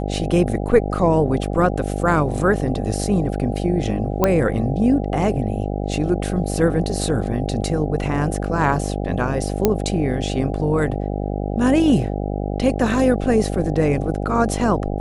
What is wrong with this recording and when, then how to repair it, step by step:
buzz 50 Hz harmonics 16 -24 dBFS
4.24 s: pop -3 dBFS
9.65 s: pop -2 dBFS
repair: de-click; de-hum 50 Hz, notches 16

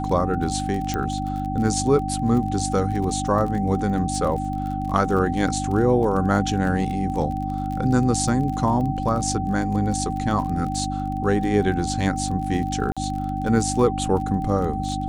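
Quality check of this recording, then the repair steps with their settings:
crackle 29 per s -29 dBFS
hum 50 Hz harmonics 6 -28 dBFS
whine 770 Hz -28 dBFS
0.94 s: pop -11 dBFS
12.92–12.97 s: dropout 46 ms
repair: de-click; band-stop 770 Hz, Q 30; de-hum 50 Hz, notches 6; interpolate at 12.92 s, 46 ms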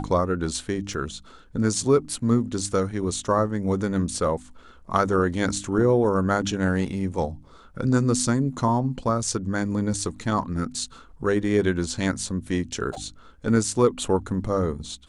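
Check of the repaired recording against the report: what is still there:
0.94 s: pop

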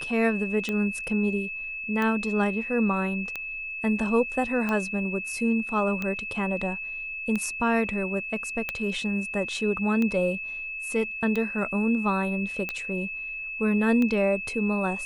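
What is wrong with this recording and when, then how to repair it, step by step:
tick 45 rpm -16 dBFS
whine 2.6 kHz -32 dBFS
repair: de-click; band-stop 2.6 kHz, Q 30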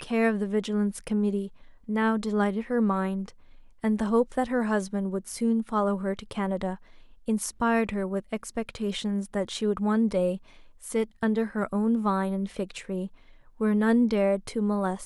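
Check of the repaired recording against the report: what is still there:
nothing left

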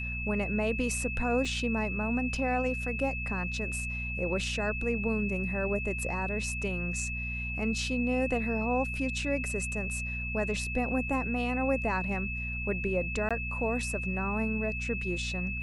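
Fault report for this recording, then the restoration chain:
hum 60 Hz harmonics 4 -37 dBFS
whine 2.6 kHz -35 dBFS
1.45 s: dropout 2.6 ms
13.29–13.31 s: dropout 16 ms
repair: de-hum 60 Hz, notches 4; band-stop 2.6 kHz, Q 30; interpolate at 1.45 s, 2.6 ms; interpolate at 13.29 s, 16 ms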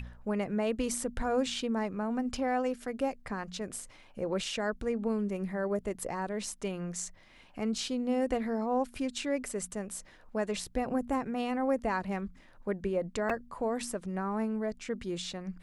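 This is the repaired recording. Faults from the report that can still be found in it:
nothing left

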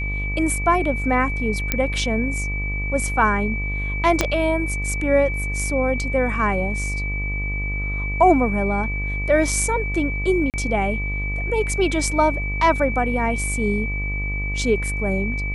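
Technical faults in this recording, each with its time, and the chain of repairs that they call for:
buzz 50 Hz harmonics 25 -26 dBFS
whine 2.3 kHz -27 dBFS
1.72 s: pop -4 dBFS
4.21 s: pop -3 dBFS
10.50–10.54 s: dropout 38 ms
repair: de-click; band-stop 2.3 kHz, Q 30; de-hum 50 Hz, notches 25; interpolate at 10.50 s, 38 ms

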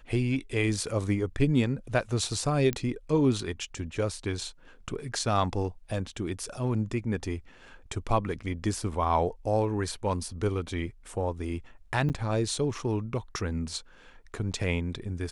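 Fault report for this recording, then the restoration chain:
2.73 s: pop -15 dBFS
12.09–12.10 s: dropout 8.9 ms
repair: de-click; interpolate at 12.09 s, 8.9 ms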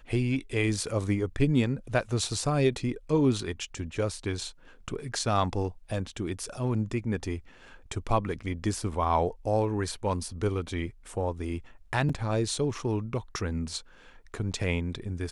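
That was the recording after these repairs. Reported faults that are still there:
nothing left

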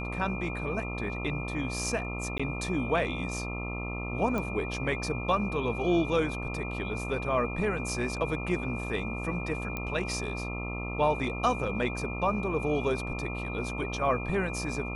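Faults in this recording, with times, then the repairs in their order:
buzz 60 Hz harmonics 22 -36 dBFS
whine 2.4 kHz -38 dBFS
2.38–2.40 s: dropout 15 ms
4.38 s: pop -19 dBFS
9.77 s: pop -19 dBFS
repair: de-click; band-stop 2.4 kHz, Q 30; de-hum 60 Hz, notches 22; interpolate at 2.38 s, 15 ms

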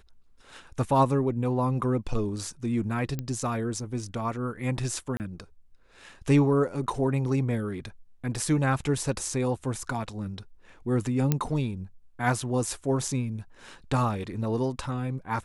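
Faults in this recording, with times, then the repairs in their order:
3.19 s: pop -18 dBFS
5.17–5.20 s: dropout 29 ms
11.32 s: pop -10 dBFS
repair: de-click; interpolate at 5.17 s, 29 ms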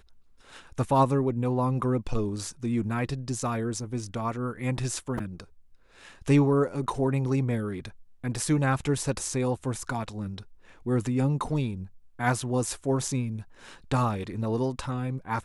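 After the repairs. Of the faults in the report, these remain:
nothing left

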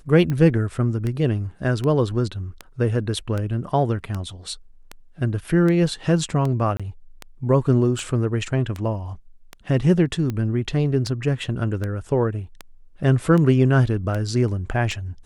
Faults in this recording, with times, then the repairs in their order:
tick 78 rpm -15 dBFS
6.77–6.80 s: dropout 26 ms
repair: de-click; interpolate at 6.77 s, 26 ms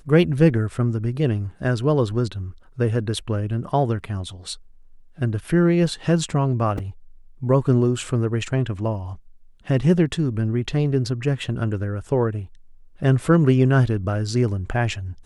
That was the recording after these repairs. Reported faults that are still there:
nothing left

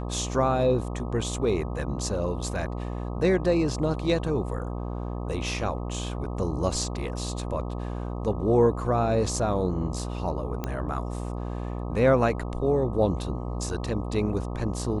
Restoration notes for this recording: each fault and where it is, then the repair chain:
buzz 60 Hz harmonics 21 -32 dBFS
10.64 s: pop -16 dBFS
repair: de-click; de-hum 60 Hz, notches 21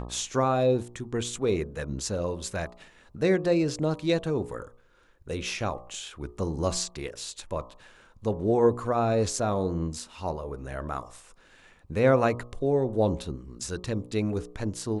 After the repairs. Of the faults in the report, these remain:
nothing left

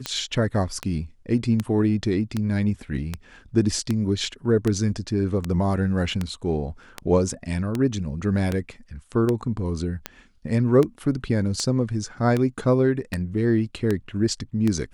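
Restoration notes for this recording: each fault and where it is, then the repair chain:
tick 78 rpm -11 dBFS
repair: de-click

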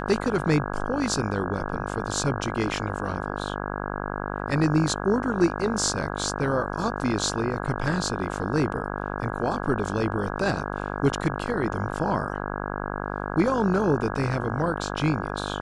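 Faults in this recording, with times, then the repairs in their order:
buzz 50 Hz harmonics 33 -31 dBFS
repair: de-hum 50 Hz, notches 33

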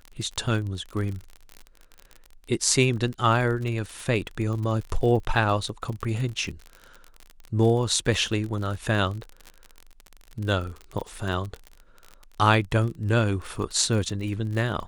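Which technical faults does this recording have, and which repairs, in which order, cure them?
crackle 44 per s -31 dBFS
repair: de-click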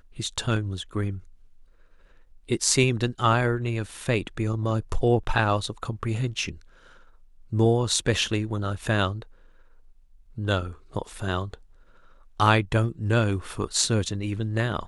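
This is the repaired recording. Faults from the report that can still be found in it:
nothing left

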